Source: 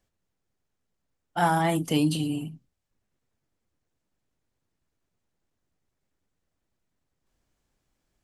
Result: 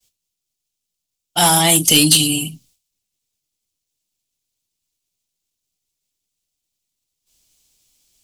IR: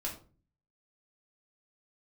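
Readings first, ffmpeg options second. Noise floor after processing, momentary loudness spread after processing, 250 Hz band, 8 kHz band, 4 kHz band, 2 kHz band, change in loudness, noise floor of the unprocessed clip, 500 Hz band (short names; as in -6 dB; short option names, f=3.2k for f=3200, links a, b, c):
-80 dBFS, 13 LU, +6.5 dB, +27.0 dB, +21.5 dB, +10.0 dB, +13.5 dB, -81 dBFS, +6.5 dB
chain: -af "aexciter=amount=3.5:drive=9.9:freq=2.5k,agate=range=-33dB:threshold=-57dB:ratio=3:detection=peak,acontrast=89"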